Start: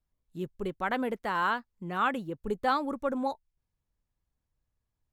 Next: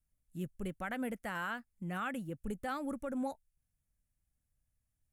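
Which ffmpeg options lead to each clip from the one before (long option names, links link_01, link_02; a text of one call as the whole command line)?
ffmpeg -i in.wav -af "equalizer=frequency=400:width_type=o:width=0.67:gain=-10,equalizer=frequency=1000:width_type=o:width=0.67:gain=-12,equalizer=frequency=4000:width_type=o:width=0.67:gain=-11,equalizer=frequency=10000:width_type=o:width=0.67:gain=9,alimiter=level_in=5dB:limit=-24dB:level=0:latency=1:release=150,volume=-5dB" out.wav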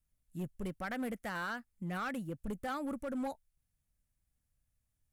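ffmpeg -i in.wav -af "asoftclip=type=hard:threshold=-34dB,volume=1dB" out.wav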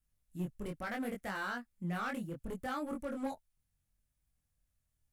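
ffmpeg -i in.wav -af "flanger=delay=20:depth=3.7:speed=0.71,volume=3dB" out.wav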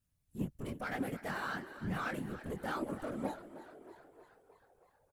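ffmpeg -i in.wav -filter_complex "[0:a]asplit=8[link_01][link_02][link_03][link_04][link_05][link_06][link_07][link_08];[link_02]adelay=314,afreqshift=42,volume=-14dB[link_09];[link_03]adelay=628,afreqshift=84,volume=-18.3dB[link_10];[link_04]adelay=942,afreqshift=126,volume=-22.6dB[link_11];[link_05]adelay=1256,afreqshift=168,volume=-26.9dB[link_12];[link_06]adelay=1570,afreqshift=210,volume=-31.2dB[link_13];[link_07]adelay=1884,afreqshift=252,volume=-35.5dB[link_14];[link_08]adelay=2198,afreqshift=294,volume=-39.8dB[link_15];[link_01][link_09][link_10][link_11][link_12][link_13][link_14][link_15]amix=inputs=8:normalize=0,afftfilt=real='hypot(re,im)*cos(2*PI*random(0))':imag='hypot(re,im)*sin(2*PI*random(1))':win_size=512:overlap=0.75,volume=6dB" out.wav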